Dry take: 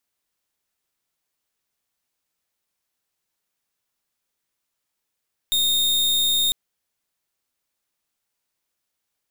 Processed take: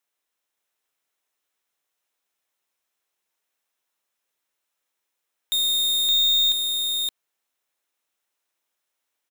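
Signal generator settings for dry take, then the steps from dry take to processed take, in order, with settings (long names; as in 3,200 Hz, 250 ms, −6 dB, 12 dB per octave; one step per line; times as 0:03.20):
pulse wave 3,680 Hz, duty 41% −20 dBFS 1.00 s
bass and treble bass −13 dB, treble −3 dB
notch filter 4,600 Hz, Q 11
on a send: single-tap delay 568 ms −3 dB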